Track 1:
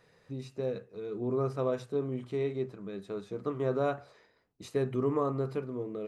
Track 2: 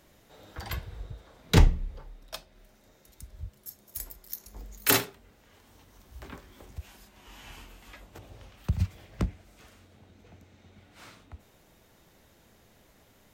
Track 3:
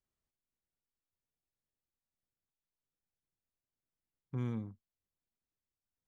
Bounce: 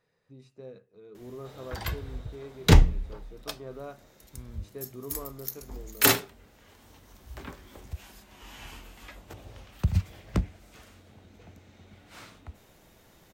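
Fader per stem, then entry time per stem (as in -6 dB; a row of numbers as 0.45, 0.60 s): -11.5, +2.5, -11.0 dB; 0.00, 1.15, 0.00 s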